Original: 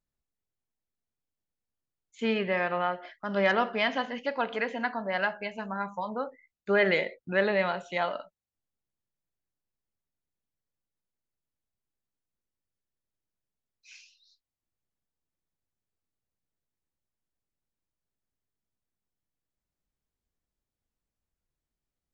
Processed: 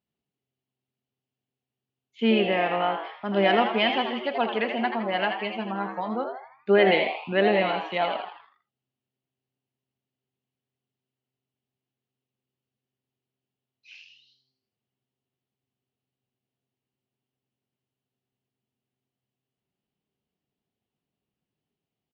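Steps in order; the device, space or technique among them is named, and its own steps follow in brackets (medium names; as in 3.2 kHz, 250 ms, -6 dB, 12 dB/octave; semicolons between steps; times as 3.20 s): frequency-shifting delay pedal into a guitar cabinet (frequency-shifting echo 81 ms, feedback 46%, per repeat +130 Hz, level -7 dB; cabinet simulation 100–4500 Hz, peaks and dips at 110 Hz +8 dB, 220 Hz +8 dB, 400 Hz +7 dB, 740 Hz +6 dB, 1.5 kHz -3 dB, 2.9 kHz +9 dB)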